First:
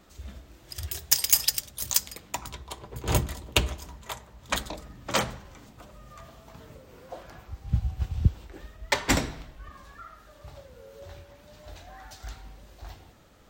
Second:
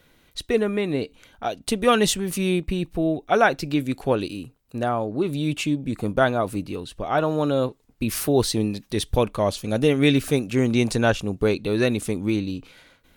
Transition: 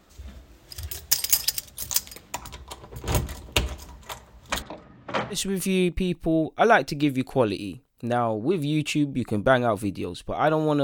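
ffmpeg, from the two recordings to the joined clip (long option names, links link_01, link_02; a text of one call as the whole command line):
ffmpeg -i cue0.wav -i cue1.wav -filter_complex "[0:a]asettb=1/sr,asplit=3[link_01][link_02][link_03];[link_01]atrim=end=4.624[link_04];[link_02]atrim=start=4.62:end=5.47,asetpts=PTS-STARTPTS,afade=type=in:duration=0.004:curve=qsin,afade=type=out:start_time=0.846:duration=0.004:curve=qsin,highpass=110,lowpass=2500[link_05];[link_03]atrim=start=5.466[link_06];[link_04][link_05]acrossfade=duration=0.004:curve1=hsin:curve2=qsin[link_07];[link_07][link_06]acrossfade=duration=0.004:curve1=qsin:curve2=hsin,apad=whole_dur=10.83,atrim=end=10.83,atrim=end=5.47,asetpts=PTS-STARTPTS[link_08];[1:a]atrim=start=2:end=7.54,asetpts=PTS-STARTPTS[link_09];[link_08][link_09]acrossfade=duration=0.18:curve1=tri:curve2=tri" out.wav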